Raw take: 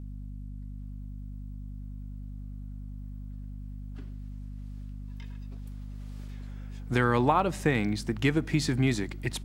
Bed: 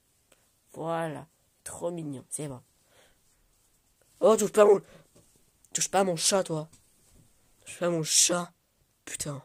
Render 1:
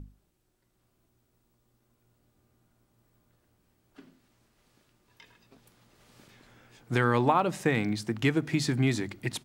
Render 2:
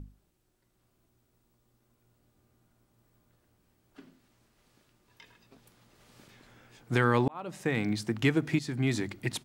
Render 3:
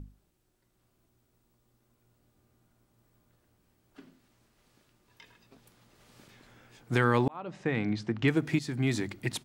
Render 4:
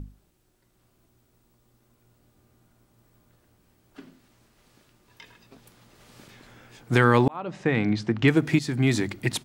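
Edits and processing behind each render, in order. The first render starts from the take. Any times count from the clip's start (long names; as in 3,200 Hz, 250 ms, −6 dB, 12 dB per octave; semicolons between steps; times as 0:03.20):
mains-hum notches 50/100/150/200/250 Hz
0:07.28–0:07.92: fade in; 0:08.59–0:09.00: fade in, from −12.5 dB
0:07.36–0:08.28: high-frequency loss of the air 140 metres
level +6.5 dB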